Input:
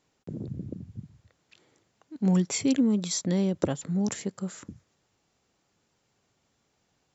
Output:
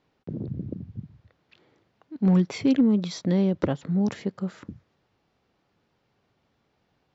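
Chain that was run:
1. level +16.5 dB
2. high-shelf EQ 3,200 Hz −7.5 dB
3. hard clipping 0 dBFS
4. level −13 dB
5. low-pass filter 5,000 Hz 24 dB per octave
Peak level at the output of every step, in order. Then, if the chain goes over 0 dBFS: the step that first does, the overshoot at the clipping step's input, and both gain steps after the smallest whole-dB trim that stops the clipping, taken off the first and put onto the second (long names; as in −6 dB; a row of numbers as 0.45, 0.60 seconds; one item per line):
+7.5, +7.5, 0.0, −13.0, −12.5 dBFS
step 1, 7.5 dB
step 1 +8.5 dB, step 4 −5 dB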